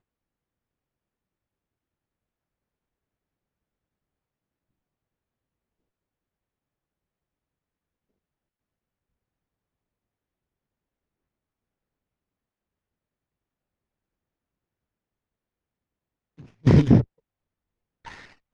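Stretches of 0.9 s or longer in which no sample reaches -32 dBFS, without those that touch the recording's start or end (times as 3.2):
17.03–18.06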